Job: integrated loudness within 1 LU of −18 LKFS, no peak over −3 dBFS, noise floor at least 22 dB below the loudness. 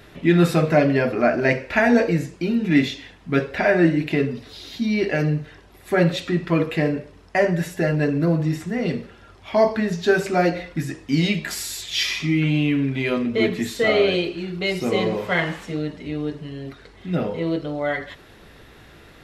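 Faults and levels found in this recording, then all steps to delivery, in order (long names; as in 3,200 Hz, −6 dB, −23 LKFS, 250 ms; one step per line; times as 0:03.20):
integrated loudness −21.5 LKFS; sample peak −4.0 dBFS; target loudness −18.0 LKFS
→ level +3.5 dB
brickwall limiter −3 dBFS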